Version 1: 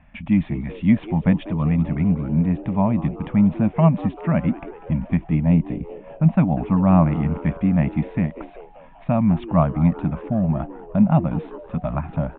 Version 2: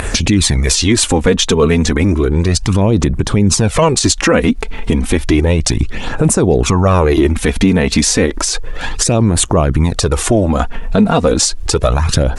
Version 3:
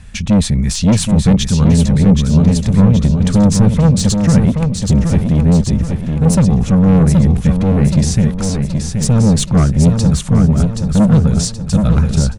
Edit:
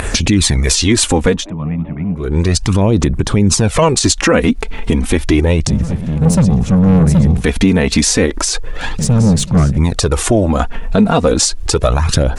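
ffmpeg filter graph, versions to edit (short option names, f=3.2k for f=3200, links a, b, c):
-filter_complex "[2:a]asplit=2[a][b];[1:a]asplit=4[c][d][e][f];[c]atrim=end=1.5[g];[0:a]atrim=start=1.26:end=2.38[h];[d]atrim=start=2.14:end=5.672[i];[a]atrim=start=5.668:end=7.442[j];[e]atrim=start=7.438:end=8.992[k];[b]atrim=start=8.988:end=9.782[l];[f]atrim=start=9.778[m];[g][h]acrossfade=d=0.24:c1=tri:c2=tri[n];[n][i]acrossfade=d=0.24:c1=tri:c2=tri[o];[o][j]acrossfade=d=0.004:c1=hsin:c2=hsin[p];[p][k]acrossfade=d=0.004:c1=hsin:c2=hsin[q];[q][l]acrossfade=d=0.004:c1=hsin:c2=hsin[r];[r][m]acrossfade=d=0.004:c1=hsin:c2=hsin"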